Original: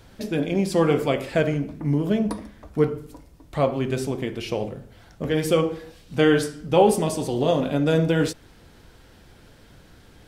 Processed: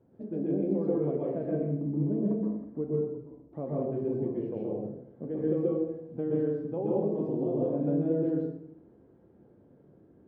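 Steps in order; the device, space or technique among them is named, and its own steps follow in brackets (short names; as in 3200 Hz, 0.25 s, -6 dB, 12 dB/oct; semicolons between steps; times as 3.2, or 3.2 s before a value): television next door (compressor 3:1, threshold -21 dBFS, peak gain reduction 8 dB; LPF 370 Hz 12 dB/oct; reverb RT60 0.65 s, pre-delay 0.118 s, DRR -4.5 dB); HPF 220 Hz 12 dB/oct; gain -4.5 dB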